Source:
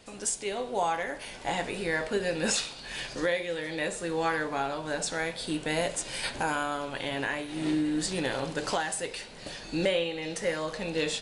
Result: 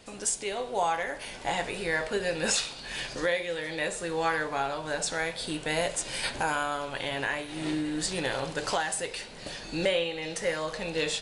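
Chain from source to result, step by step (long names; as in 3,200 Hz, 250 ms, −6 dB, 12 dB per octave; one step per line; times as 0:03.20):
dynamic equaliser 250 Hz, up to −6 dB, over −44 dBFS, Q 1.2
level +1.5 dB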